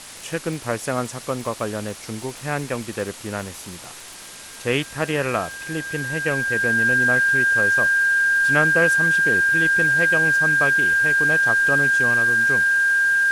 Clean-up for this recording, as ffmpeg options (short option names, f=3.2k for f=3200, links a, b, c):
-af "adeclick=t=4,bandreject=f=1.6k:w=30,afftdn=nr=28:nf=-39"